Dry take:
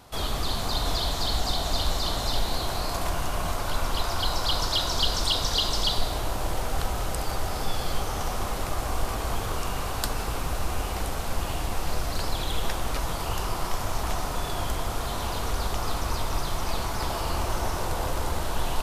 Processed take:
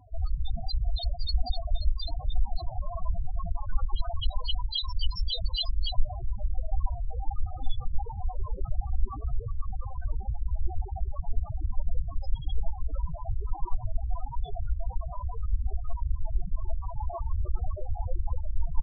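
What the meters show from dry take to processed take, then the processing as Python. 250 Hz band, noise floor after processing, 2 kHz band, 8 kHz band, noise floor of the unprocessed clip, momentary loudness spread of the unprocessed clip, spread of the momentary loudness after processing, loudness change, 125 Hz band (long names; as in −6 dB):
−16.5 dB, −40 dBFS, −30.0 dB, below −40 dB, −31 dBFS, 6 LU, 5 LU, −5.5 dB, −1.5 dB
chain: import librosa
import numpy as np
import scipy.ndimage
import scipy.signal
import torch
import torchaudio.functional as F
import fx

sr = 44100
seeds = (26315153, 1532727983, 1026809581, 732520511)

y = fx.dereverb_blind(x, sr, rt60_s=1.2)
y = fx.spec_topn(y, sr, count=4)
y = y * 10.0 ** (4.5 / 20.0)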